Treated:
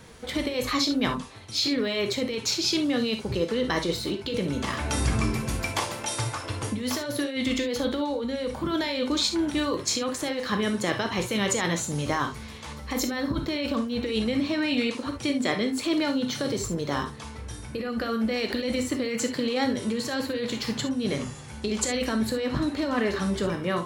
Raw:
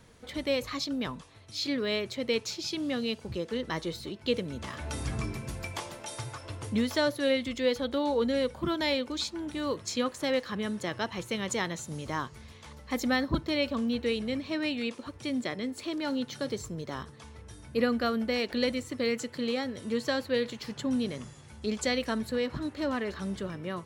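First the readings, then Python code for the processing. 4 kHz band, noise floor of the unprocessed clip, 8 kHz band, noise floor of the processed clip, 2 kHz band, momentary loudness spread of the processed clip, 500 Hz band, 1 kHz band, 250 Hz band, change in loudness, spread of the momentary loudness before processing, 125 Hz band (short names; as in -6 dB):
+5.5 dB, -51 dBFS, +9.5 dB, -40 dBFS, +4.0 dB, 6 LU, +2.0 dB, +5.0 dB, +5.0 dB, +4.5 dB, 10 LU, +7.0 dB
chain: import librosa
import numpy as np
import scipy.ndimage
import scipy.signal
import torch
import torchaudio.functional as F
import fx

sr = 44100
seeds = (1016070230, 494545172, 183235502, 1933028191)

y = fx.low_shelf(x, sr, hz=69.0, db=-6.5)
y = fx.over_compress(y, sr, threshold_db=-33.0, ratio=-1.0)
y = fx.rev_gated(y, sr, seeds[0], gate_ms=90, shape='flat', drr_db=4.5)
y = y * 10.0 ** (6.0 / 20.0)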